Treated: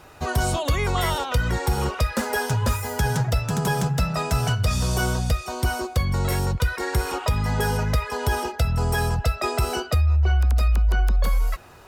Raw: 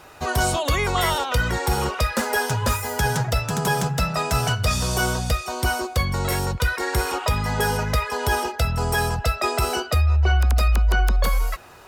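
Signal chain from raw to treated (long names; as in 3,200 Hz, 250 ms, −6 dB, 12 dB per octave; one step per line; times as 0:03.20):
low-shelf EQ 280 Hz +6.5 dB
downward compressor 3 to 1, threshold −14 dBFS, peak gain reduction 4.5 dB
level −3 dB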